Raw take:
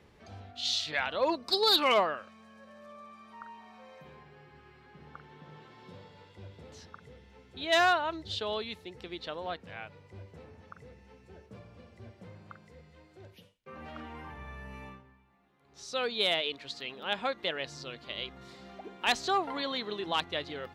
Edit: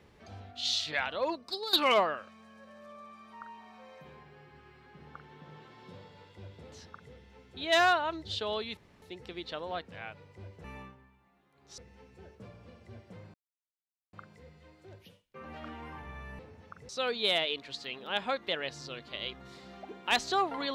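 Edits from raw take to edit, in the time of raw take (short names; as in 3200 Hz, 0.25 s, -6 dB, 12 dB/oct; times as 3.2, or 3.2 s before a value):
0.93–1.73 fade out, to -15 dB
8.77 insert room tone 0.25 s
10.39–10.89 swap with 14.71–15.85
12.45 insert silence 0.79 s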